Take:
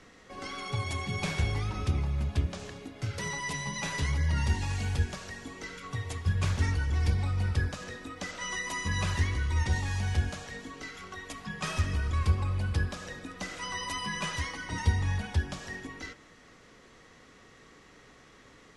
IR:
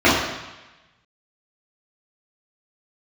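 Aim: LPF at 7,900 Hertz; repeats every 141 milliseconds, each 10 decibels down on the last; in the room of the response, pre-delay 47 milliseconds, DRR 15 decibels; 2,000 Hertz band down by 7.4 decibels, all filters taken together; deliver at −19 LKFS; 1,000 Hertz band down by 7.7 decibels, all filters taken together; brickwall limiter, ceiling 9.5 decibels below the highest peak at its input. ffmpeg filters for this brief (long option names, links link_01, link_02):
-filter_complex "[0:a]lowpass=7900,equalizer=frequency=1000:width_type=o:gain=-7.5,equalizer=frequency=2000:width_type=o:gain=-6.5,alimiter=limit=-23.5dB:level=0:latency=1,aecho=1:1:141|282|423|564:0.316|0.101|0.0324|0.0104,asplit=2[link_01][link_02];[1:a]atrim=start_sample=2205,adelay=47[link_03];[link_02][link_03]afir=irnorm=-1:irlink=0,volume=-41.5dB[link_04];[link_01][link_04]amix=inputs=2:normalize=0,volume=13.5dB"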